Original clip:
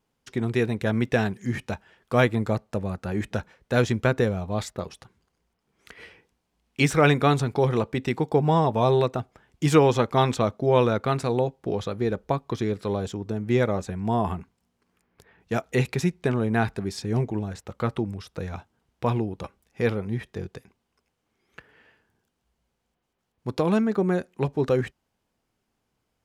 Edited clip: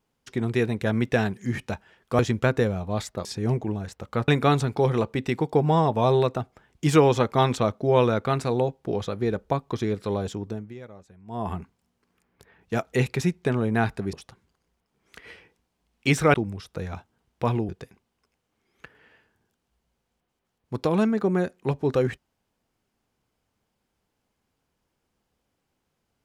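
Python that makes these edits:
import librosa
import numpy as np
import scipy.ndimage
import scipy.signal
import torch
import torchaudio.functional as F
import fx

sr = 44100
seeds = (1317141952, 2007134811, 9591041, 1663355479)

y = fx.edit(x, sr, fx.cut(start_s=2.19, length_s=1.61),
    fx.swap(start_s=4.86, length_s=2.21, other_s=16.92, other_length_s=1.03),
    fx.fade_down_up(start_s=13.22, length_s=1.15, db=-20.0, fade_s=0.31),
    fx.cut(start_s=19.3, length_s=1.13), tone=tone)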